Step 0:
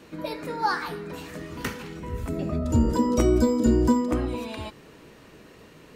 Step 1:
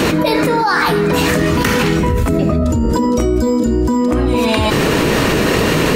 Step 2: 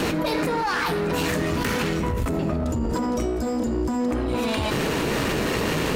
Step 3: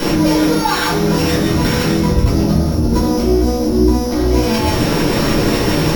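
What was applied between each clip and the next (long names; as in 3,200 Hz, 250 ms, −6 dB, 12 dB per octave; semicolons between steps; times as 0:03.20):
envelope flattener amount 100%; level +2 dB
asymmetric clip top −17 dBFS; level −8 dB
samples sorted by size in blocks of 8 samples; rectangular room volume 290 cubic metres, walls furnished, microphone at 4.9 metres; level −1 dB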